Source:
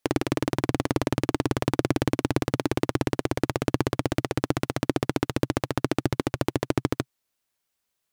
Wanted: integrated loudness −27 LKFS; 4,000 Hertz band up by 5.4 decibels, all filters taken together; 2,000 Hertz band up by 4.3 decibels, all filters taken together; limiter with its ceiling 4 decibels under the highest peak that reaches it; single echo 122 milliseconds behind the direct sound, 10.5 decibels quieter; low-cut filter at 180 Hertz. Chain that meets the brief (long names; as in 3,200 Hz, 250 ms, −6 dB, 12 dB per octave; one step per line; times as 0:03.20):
high-pass filter 180 Hz
parametric band 2,000 Hz +4 dB
parametric band 4,000 Hz +5.5 dB
brickwall limiter −7.5 dBFS
single-tap delay 122 ms −10.5 dB
level +2.5 dB